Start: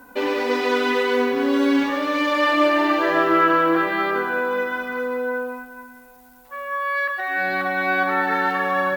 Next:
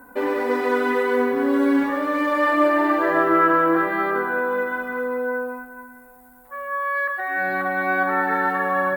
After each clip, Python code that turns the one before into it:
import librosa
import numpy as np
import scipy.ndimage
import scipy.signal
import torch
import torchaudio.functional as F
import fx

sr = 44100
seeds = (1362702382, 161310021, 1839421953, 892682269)

y = fx.band_shelf(x, sr, hz=4000.0, db=-11.5, octaves=1.7)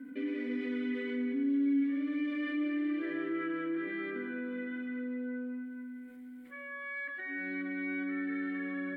y = fx.vowel_filter(x, sr, vowel='i')
y = fx.env_flatten(y, sr, amount_pct=50)
y = y * 10.0 ** (-9.0 / 20.0)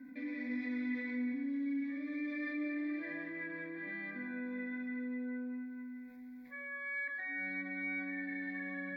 y = fx.fixed_phaser(x, sr, hz=2000.0, stages=8)
y = fx.doubler(y, sr, ms=20.0, db=-12.0)
y = y * 10.0 ** (1.0 / 20.0)